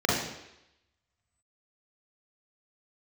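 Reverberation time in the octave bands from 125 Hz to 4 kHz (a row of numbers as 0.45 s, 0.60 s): 0.70 s, 0.80 s, 0.85 s, 0.85 s, 0.90 s, 0.90 s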